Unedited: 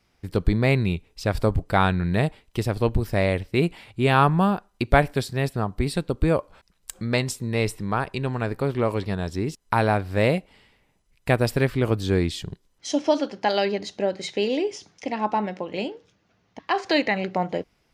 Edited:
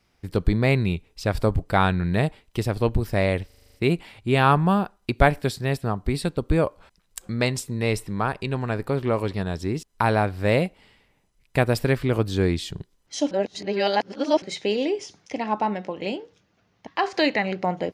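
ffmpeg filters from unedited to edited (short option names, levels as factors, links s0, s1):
-filter_complex "[0:a]asplit=10[s0][s1][s2][s3][s4][s5][s6][s7][s8][s9];[s0]atrim=end=3.502[s10];[s1]atrim=start=3.458:end=3.502[s11];[s2]atrim=start=3.458:end=3.502[s12];[s3]atrim=start=3.458:end=3.502[s13];[s4]atrim=start=3.458:end=3.502[s14];[s5]atrim=start=3.458:end=3.502[s15];[s6]atrim=start=3.458:end=3.502[s16];[s7]atrim=start=3.458:end=13.032[s17];[s8]atrim=start=13.028:end=14.142,asetpts=PTS-STARTPTS,areverse[s18];[s9]atrim=start=14.138[s19];[s10][s11]acrossfade=d=0.004:c1=hsin:c2=hsin[s20];[s20][s12]acrossfade=d=0.004:c1=hsin:c2=hsin[s21];[s21][s13]acrossfade=d=0.004:c1=hsin:c2=hsin[s22];[s22][s14]acrossfade=d=0.004:c1=hsin:c2=hsin[s23];[s23][s15]acrossfade=d=0.004:c1=hsin:c2=hsin[s24];[s24][s16]acrossfade=d=0.004:c1=hsin:c2=hsin[s25];[s25][s17]acrossfade=d=0.004:c1=hsin:c2=hsin[s26];[s26][s18]acrossfade=d=0.004:c1=hsin:c2=hsin[s27];[s27][s19]acrossfade=d=0.004:c1=hsin:c2=hsin"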